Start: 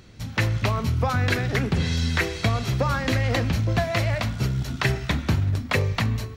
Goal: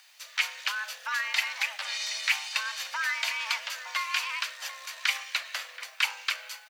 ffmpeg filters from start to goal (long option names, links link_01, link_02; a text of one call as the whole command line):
ffmpeg -i in.wav -filter_complex "[0:a]acrusher=bits=9:mix=0:aa=0.000001,highpass=1100,asplit=2[link_01][link_02];[link_02]adelay=696,lowpass=frequency=1700:poles=1,volume=-12.5dB,asplit=2[link_03][link_04];[link_04]adelay=696,lowpass=frequency=1700:poles=1,volume=0.23,asplit=2[link_05][link_06];[link_06]adelay=696,lowpass=frequency=1700:poles=1,volume=0.23[link_07];[link_01][link_03][link_05][link_07]amix=inputs=4:normalize=0,atempo=0.95,afreqshift=400" out.wav